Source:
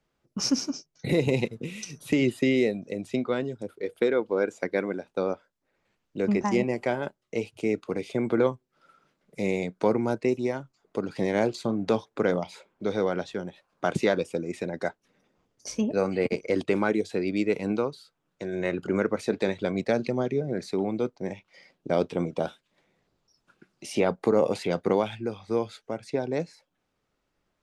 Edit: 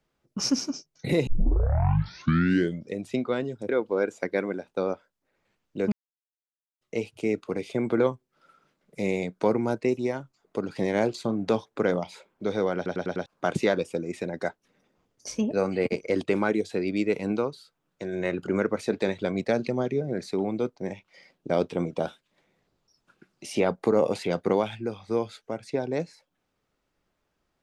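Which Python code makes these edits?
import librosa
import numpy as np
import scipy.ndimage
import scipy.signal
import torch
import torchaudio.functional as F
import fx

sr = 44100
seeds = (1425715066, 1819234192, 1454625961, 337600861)

y = fx.edit(x, sr, fx.tape_start(start_s=1.27, length_s=1.72),
    fx.cut(start_s=3.69, length_s=0.4),
    fx.silence(start_s=6.32, length_s=0.89),
    fx.stutter_over(start_s=13.16, slice_s=0.1, count=5), tone=tone)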